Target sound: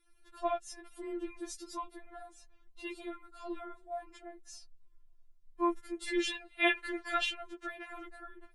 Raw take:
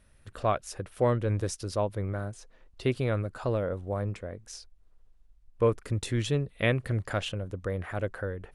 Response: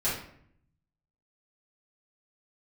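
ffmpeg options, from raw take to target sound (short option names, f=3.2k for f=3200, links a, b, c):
-filter_complex "[0:a]asplit=3[a][b][c];[a]afade=t=out:st=3.06:d=0.02[d];[b]acompressor=threshold=-28dB:ratio=6,afade=t=in:st=3.06:d=0.02,afade=t=out:st=3.55:d=0.02[e];[c]afade=t=in:st=3.55:d=0.02[f];[d][e][f]amix=inputs=3:normalize=0,asettb=1/sr,asplit=3[g][h][i];[g]atrim=end=6.084[j];[h]atrim=start=6.08:end=7.85,asetpts=PTS-STARTPTS,afade=t=in:d=0.004:c=qsin,afade=t=out:st=1.766:d=0.004:c=qsin,equalizer=f=2.3k:w=0.34:g=11.5[k];[i]atrim=start=7.846[l];[j][k]acrossfade=d=0.004:c1=hsin:c2=qsin[m];[m][l]acrossfade=d=0.004:c1=qsin:c2=hsin,afftfilt=real='re*4*eq(mod(b,16),0)':imag='im*4*eq(mod(b,16),0)':win_size=2048:overlap=0.75,volume=-4.5dB"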